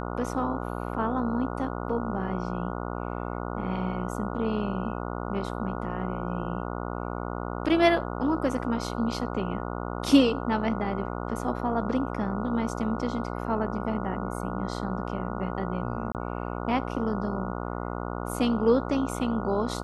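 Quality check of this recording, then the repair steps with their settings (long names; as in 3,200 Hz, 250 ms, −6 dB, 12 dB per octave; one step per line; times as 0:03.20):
mains buzz 60 Hz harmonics 24 −33 dBFS
0:16.12–0:16.15: drop-out 28 ms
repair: hum removal 60 Hz, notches 24
repair the gap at 0:16.12, 28 ms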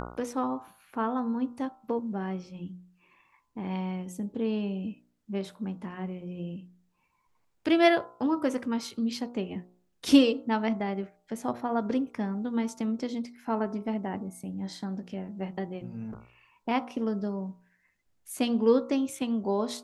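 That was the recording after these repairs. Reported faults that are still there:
none of them is left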